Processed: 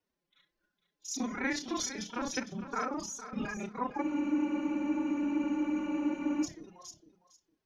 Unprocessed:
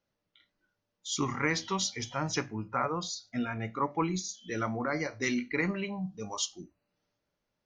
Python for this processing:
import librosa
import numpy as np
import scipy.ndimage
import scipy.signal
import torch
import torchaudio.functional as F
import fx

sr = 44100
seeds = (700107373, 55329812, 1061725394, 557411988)

p1 = fx.local_reverse(x, sr, ms=30.0)
p2 = fx.pitch_keep_formants(p1, sr, semitones=10.0)
p3 = p2 + fx.echo_feedback(p2, sr, ms=457, feedback_pct=18, wet_db=-12.0, dry=0)
p4 = fx.spec_freeze(p3, sr, seeds[0], at_s=4.03, hold_s=2.42)
y = F.gain(torch.from_numpy(p4), -2.0).numpy()